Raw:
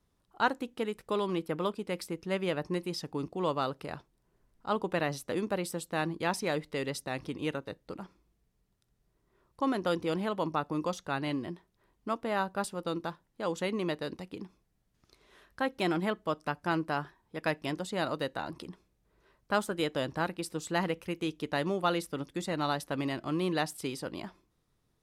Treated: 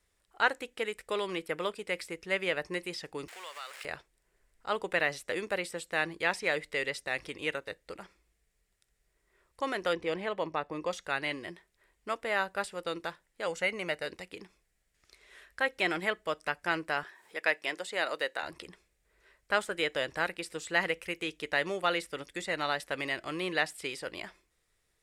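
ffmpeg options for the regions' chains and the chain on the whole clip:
-filter_complex "[0:a]asettb=1/sr,asplit=3[s0][s1][s2];[s0]atrim=end=3.284[s3];[s1]atrim=start=3.28:end=3.85,asetpts=PTS-STARTPTS,afade=t=in:d=0.004:c=qsin,afade=t=out:st=0.566:d=0.004:c=qsin,aeval=exprs='val(0)+0.5*0.0106*sgn(val(0))':c=same,highpass=1100,acompressor=threshold=0.00708:ratio=2.5:attack=3.2:release=140:knee=1:detection=peak[s4];[s2]atrim=start=3.846[s5];[s3][s4]acrossfade=d=0.004:c1=hsin:c2=qsin[s6];[s6][s5]acrossfade=d=0.004:c1=qsin:c2=hsin,asettb=1/sr,asplit=3[s7][s8][s9];[s7]atrim=end=9.934[s10];[s8]atrim=start=9.93:end=10.91,asetpts=PTS-STARTPTS,afade=t=in:d=0.004:c=qsin,afade=t=out:st=0.976:d=0.004:c=qsin,aemphasis=mode=reproduction:type=75fm,bandreject=f=1400:w=8.4[s11];[s9]atrim=start=10.906[s12];[s10][s11]acrossfade=d=0.004:c1=hsin:c2=qsin[s13];[s13][s12]acrossfade=d=0.004:c1=qsin:c2=hsin,asettb=1/sr,asplit=3[s14][s15][s16];[s14]atrim=end=13.474[s17];[s15]atrim=start=13.47:end=14.06,asetpts=PTS-STARTPTS,afade=t=in:d=0.004:c=qsin,afade=t=out:st=0.586:d=0.004:c=qsin,equalizer=f=3500:w=5:g=-9,aecho=1:1:1.4:0.42,atrim=end_sample=26019[s18];[s16]atrim=start=14.056[s19];[s17][s18]acrossfade=d=0.004:c1=hsin:c2=qsin[s20];[s20][s19]acrossfade=d=0.004:c1=qsin:c2=hsin,asettb=1/sr,asplit=3[s21][s22][s23];[s21]atrim=end=17.034[s24];[s22]atrim=start=17.03:end=18.43,asetpts=PTS-STARTPTS,afade=t=in:d=0.004:c=qsin,afade=t=out:st=1.396:d=0.004:c=qsin,highpass=300,acompressor=mode=upward:threshold=0.00398:ratio=2.5:attack=3.2:release=140:knee=2.83:detection=peak[s25];[s23]atrim=start=18.426[s26];[s24][s25]acrossfade=d=0.004:c1=hsin:c2=qsin[s27];[s27][s26]acrossfade=d=0.004:c1=qsin:c2=hsin,bandreject=f=6200:w=21,acrossover=split=4200[s28][s29];[s29]acompressor=threshold=0.00251:ratio=4:attack=1:release=60[s30];[s28][s30]amix=inputs=2:normalize=0,equalizer=f=125:t=o:w=1:g=-9,equalizer=f=250:t=o:w=1:g=-10,equalizer=f=500:t=o:w=1:g=3,equalizer=f=1000:t=o:w=1:g=-5,equalizer=f=2000:t=o:w=1:g=10,equalizer=f=8000:t=o:w=1:g=9"

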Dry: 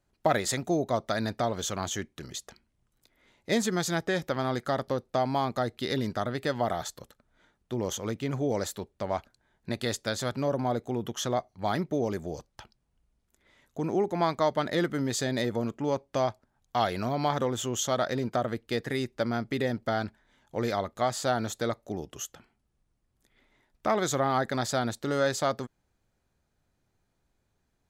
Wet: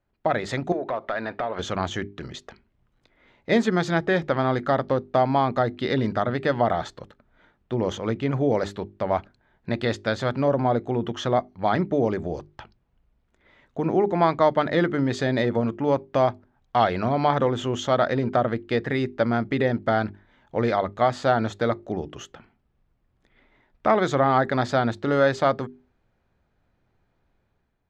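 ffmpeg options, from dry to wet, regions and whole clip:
-filter_complex "[0:a]asettb=1/sr,asplit=3[s0][s1][s2];[s0]atrim=end=0.724[s3];[s1]atrim=start=0.72:end=1.59,asetpts=PTS-STARTPTS,afade=t=in:d=0.004:c=qsin,afade=t=out:st=0.866:d=0.004:c=qsin,bass=f=250:g=-6,treble=f=4000:g=-15,acompressor=threshold=0.0178:ratio=5:attack=3.2:release=140:knee=1:detection=peak,asplit=2[s4][s5];[s5]highpass=f=720:p=1,volume=5.01,asoftclip=type=tanh:threshold=0.0841[s6];[s4][s6]amix=inputs=2:normalize=0,lowpass=f=5600:p=1,volume=0.501[s7];[s2]atrim=start=1.586[s8];[s3][s7]acrossfade=d=0.004:c1=hsin:c2=qsin[s9];[s9][s8]acrossfade=d=0.004:c1=qsin:c2=hsin,lowpass=2800,bandreject=f=50:t=h:w=6,bandreject=f=100:t=h:w=6,bandreject=f=150:t=h:w=6,bandreject=f=200:t=h:w=6,bandreject=f=250:t=h:w=6,bandreject=f=300:t=h:w=6,bandreject=f=350:t=h:w=6,bandreject=f=400:t=h:w=6,dynaudnorm=f=180:g=5:m=2.24"

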